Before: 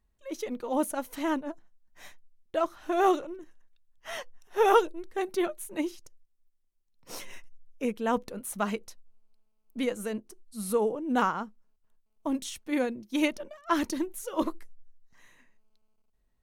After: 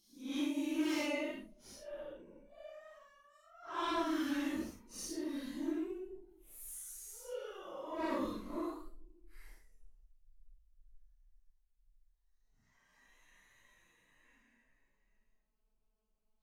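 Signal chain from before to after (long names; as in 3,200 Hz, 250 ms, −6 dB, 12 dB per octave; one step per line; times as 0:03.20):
harmonic generator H 3 −6 dB, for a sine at −8.5 dBFS
extreme stretch with random phases 6.2×, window 0.05 s, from 0:13.09
level −2.5 dB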